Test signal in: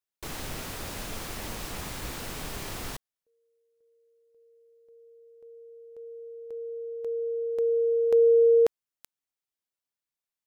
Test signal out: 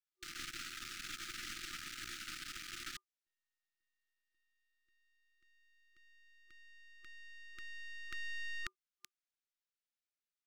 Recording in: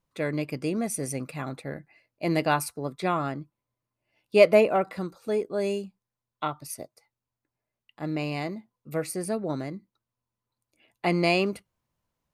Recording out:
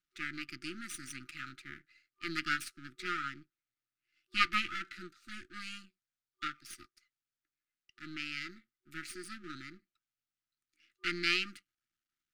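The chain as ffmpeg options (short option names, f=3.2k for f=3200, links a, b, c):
-filter_complex "[0:a]aeval=exprs='max(val(0),0)':c=same,afftfilt=real='re*(1-between(b*sr/4096,370,1200))':imag='im*(1-between(b*sr/4096,370,1200))':win_size=4096:overlap=0.75,acrossover=split=430 7400:gain=0.141 1 0.251[a][b][c];[a][b][c]amix=inputs=3:normalize=0"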